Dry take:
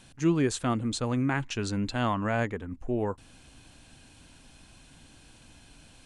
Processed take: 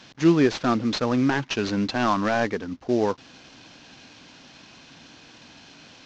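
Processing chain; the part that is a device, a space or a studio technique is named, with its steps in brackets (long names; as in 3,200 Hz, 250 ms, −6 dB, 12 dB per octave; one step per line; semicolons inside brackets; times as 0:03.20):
early wireless headset (high-pass filter 180 Hz 12 dB per octave; variable-slope delta modulation 32 kbit/s)
level +8 dB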